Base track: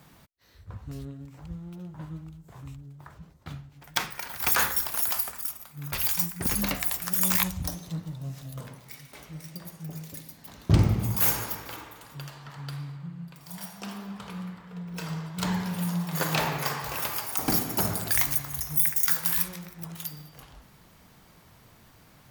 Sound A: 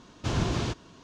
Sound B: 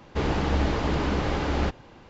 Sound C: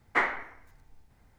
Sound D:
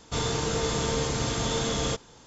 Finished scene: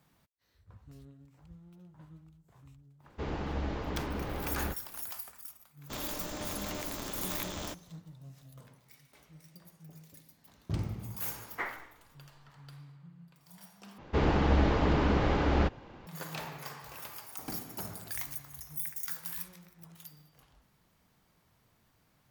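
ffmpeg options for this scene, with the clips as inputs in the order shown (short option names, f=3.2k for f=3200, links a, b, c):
-filter_complex "[2:a]asplit=2[a][b];[0:a]volume=-14dB[c];[a]highshelf=f=3.3k:g=-5.5[d];[4:a]aeval=exprs='val(0)*sgn(sin(2*PI*150*n/s))':c=same[e];[b]aemphasis=mode=reproduction:type=50kf[f];[c]asplit=2[g][h];[g]atrim=end=13.984[i];[f]atrim=end=2.09,asetpts=PTS-STARTPTS,volume=-1dB[j];[h]atrim=start=16.066[k];[d]atrim=end=2.09,asetpts=PTS-STARTPTS,volume=-10.5dB,afade=t=in:d=0.02,afade=t=out:st=2.07:d=0.02,adelay=3030[l];[e]atrim=end=2.26,asetpts=PTS-STARTPTS,volume=-12.5dB,afade=t=in:d=0.1,afade=t=out:st=2.16:d=0.1,adelay=5780[m];[3:a]atrim=end=1.38,asetpts=PTS-STARTPTS,volume=-11dB,afade=t=in:d=0.004:c=hsin,afade=t=out:st=1.376:d=0.004:c=hsin,adelay=11430[n];[i][j]acrossfade=d=0.004:c1=hsin:c2=hsin[o];[o][k]acrossfade=d=0.004:c1=hsin:c2=hsin[p];[p][l][m][n]amix=inputs=4:normalize=0"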